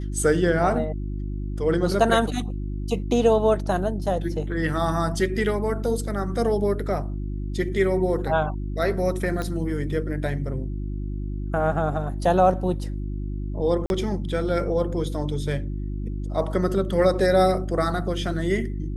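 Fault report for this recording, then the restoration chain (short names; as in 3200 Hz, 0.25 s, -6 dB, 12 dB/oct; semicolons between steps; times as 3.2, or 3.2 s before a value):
hum 50 Hz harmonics 7 -29 dBFS
9.42 pop -16 dBFS
13.86–13.9 gap 41 ms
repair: de-click; de-hum 50 Hz, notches 7; interpolate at 13.86, 41 ms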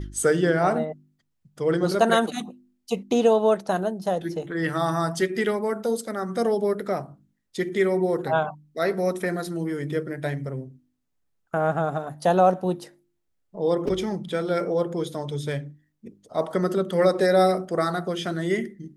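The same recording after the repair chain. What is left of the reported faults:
none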